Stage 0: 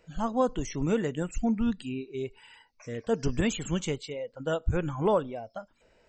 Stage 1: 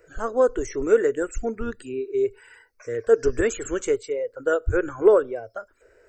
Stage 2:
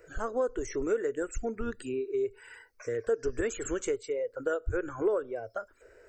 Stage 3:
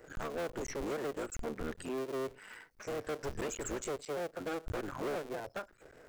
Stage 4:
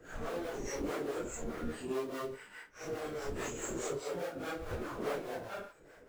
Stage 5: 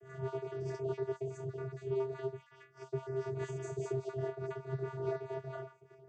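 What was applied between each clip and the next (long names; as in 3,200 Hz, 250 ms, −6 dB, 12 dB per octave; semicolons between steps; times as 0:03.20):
drawn EQ curve 110 Hz 0 dB, 160 Hz −23 dB, 410 Hz +11 dB, 870 Hz −7 dB, 1,500 Hz +9 dB, 3,200 Hz −11 dB, 9,200 Hz +6 dB; level +3 dB
downward compressor 2.5 to 1, threshold −31 dBFS, peak gain reduction 13.5 dB
sub-harmonics by changed cycles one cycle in 3, muted; soft clipping −33 dBFS, distortion −8 dB; level +1 dB
random phases in long frames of 200 ms; two-band tremolo in antiphase 4.8 Hz, depth 70%, crossover 410 Hz; level +3.5 dB
time-frequency cells dropped at random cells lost 37%; flanger 1.4 Hz, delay 10 ms, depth 1.3 ms, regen +50%; channel vocoder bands 16, square 132 Hz; level +7 dB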